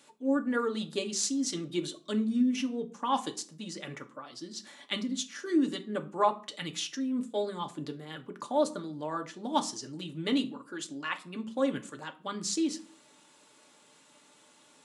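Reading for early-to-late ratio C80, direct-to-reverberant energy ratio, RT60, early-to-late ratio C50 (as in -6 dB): 21.5 dB, 4.0 dB, 0.45 s, 16.5 dB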